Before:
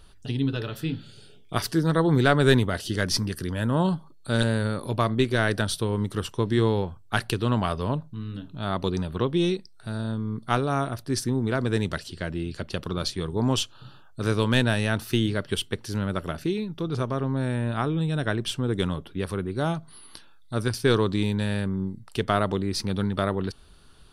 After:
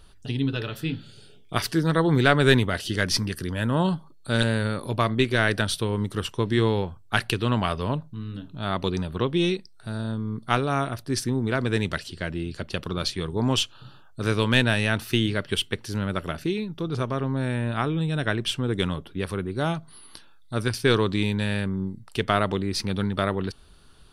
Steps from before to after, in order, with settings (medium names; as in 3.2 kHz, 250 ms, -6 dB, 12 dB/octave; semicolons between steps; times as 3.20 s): dynamic bell 2.4 kHz, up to +6 dB, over -43 dBFS, Q 1.2